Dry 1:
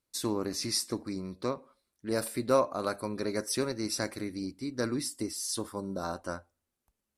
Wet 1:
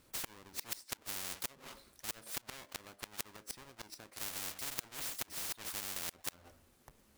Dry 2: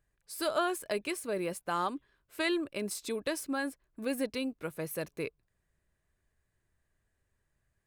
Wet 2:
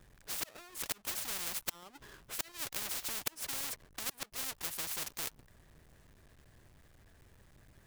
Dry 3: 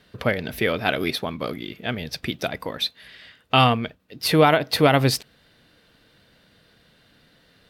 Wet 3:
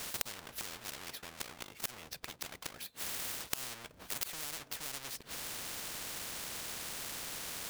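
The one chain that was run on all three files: half-waves squared off; flipped gate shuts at -22 dBFS, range -38 dB; spectral compressor 10:1; gain +5 dB

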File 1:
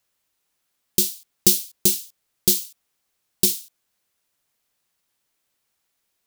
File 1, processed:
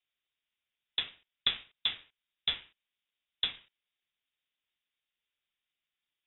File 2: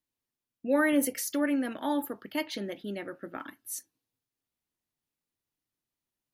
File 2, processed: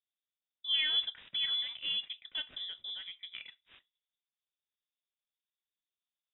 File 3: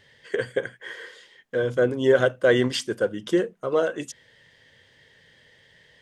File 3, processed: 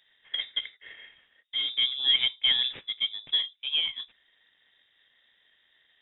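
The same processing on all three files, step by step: median filter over 15 samples; inverted band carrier 3700 Hz; gain -5.5 dB

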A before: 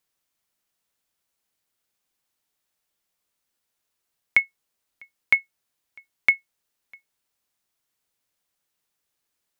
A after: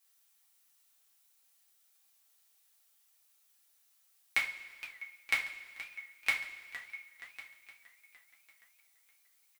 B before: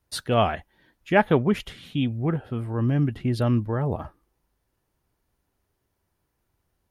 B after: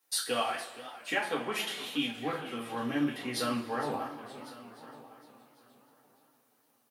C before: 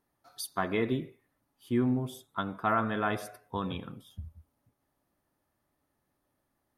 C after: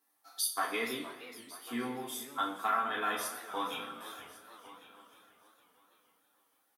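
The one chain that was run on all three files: HPF 320 Hz 12 dB/oct; tilt +2.5 dB/oct; notch 610 Hz, Q 12; compressor, threshold -28 dBFS; on a send: feedback echo 1.101 s, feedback 15%, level -18.5 dB; on the sum: two-slope reverb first 0.31 s, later 1.7 s, from -17 dB, DRR -4.5 dB; warbling echo 0.467 s, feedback 52%, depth 206 cents, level -15 dB; gain -4.5 dB

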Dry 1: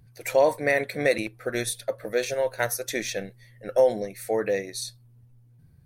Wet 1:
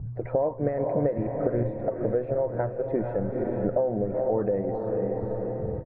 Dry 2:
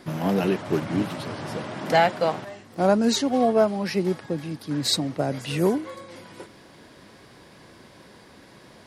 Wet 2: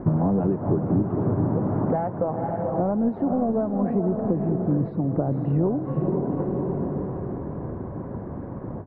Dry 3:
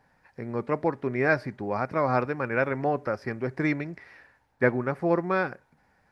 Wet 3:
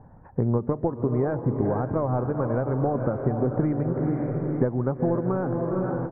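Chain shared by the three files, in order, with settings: in parallel at -5 dB: soft clip -20.5 dBFS; on the sum: bell 99 Hz +4.5 dB 1 oct; harmonic-percussive split percussive +5 dB; on a send: diffused feedback echo 0.482 s, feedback 45%, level -8 dB; on the sum: compressor 6:1, threshold -29 dBFS; LPF 1100 Hz 24 dB/oct; low shelf 280 Hz +10.5 dB; echo 0.17 s -22 dB; ending taper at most 260 dB/s; gain +3.5 dB

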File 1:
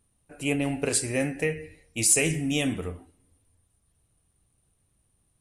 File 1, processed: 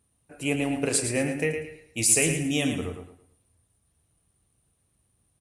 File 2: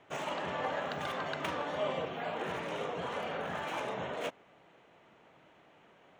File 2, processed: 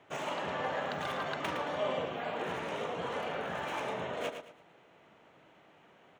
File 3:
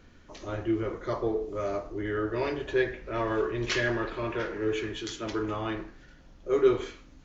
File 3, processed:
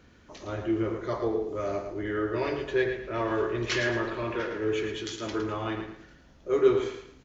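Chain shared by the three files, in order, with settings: HPF 48 Hz; feedback echo 0.111 s, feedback 30%, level -8 dB

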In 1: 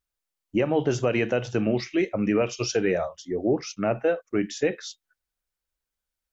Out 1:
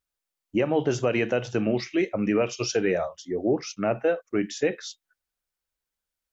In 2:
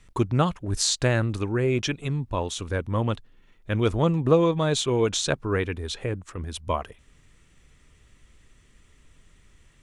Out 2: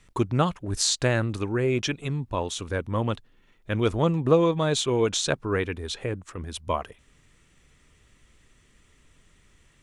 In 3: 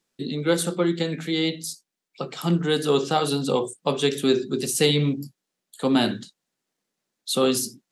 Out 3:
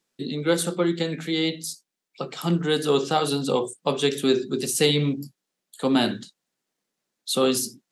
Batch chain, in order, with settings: low shelf 95 Hz -5.5 dB

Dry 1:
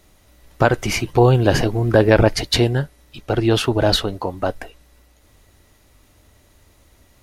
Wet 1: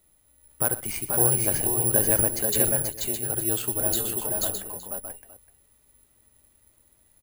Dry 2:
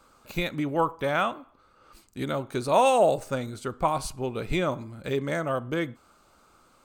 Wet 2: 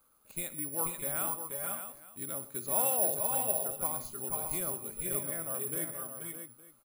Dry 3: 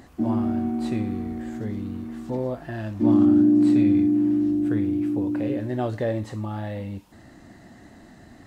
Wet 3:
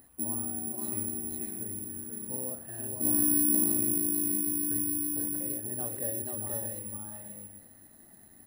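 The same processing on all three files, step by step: on a send: tapped delay 66/121/483/488/614/865 ms -17.5/-17.5/-5.5/-6.5/-8.5/-19.5 dB; on the sum: careless resampling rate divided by 4×, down filtered, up zero stuff; gain -15.5 dB

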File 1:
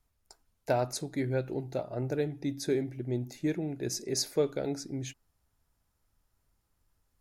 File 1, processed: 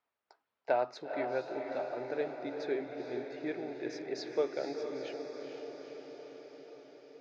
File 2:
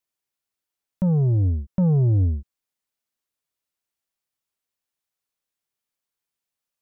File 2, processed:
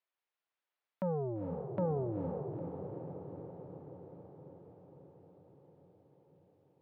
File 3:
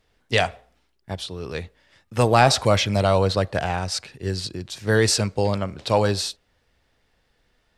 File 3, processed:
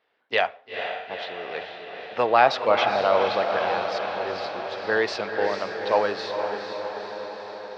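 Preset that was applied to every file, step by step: BPF 510–4900 Hz; air absorption 250 m; diffused feedback echo 0.464 s, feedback 68%, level -6 dB; gain +1.5 dB

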